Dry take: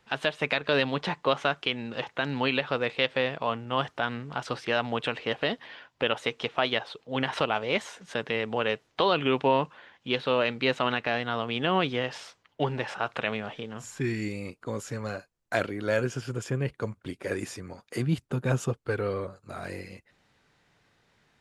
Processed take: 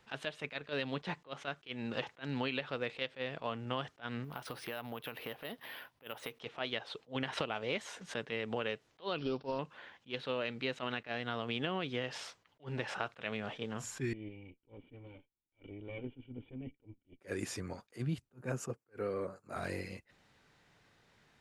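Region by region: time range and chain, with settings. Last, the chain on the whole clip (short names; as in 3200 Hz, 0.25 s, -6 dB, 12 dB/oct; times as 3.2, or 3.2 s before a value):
4.24–6.4 compressor 3:1, threshold -41 dBFS + careless resampling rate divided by 3×, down filtered, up hold
9.18–9.59 CVSD 32 kbps + bell 2000 Hz -12.5 dB 0.87 oct + careless resampling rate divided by 4×, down none, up filtered
14.13–17.21 minimum comb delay 2.1 ms + vocal tract filter i + bell 820 Hz +10.5 dB 0.66 oct
18.33–19.56 HPF 160 Hz + bell 3500 Hz -14.5 dB 0.5 oct
whole clip: dynamic EQ 940 Hz, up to -4 dB, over -39 dBFS, Q 1.4; compressor, threshold -31 dBFS; attack slew limiter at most 330 dB/s; gain -1 dB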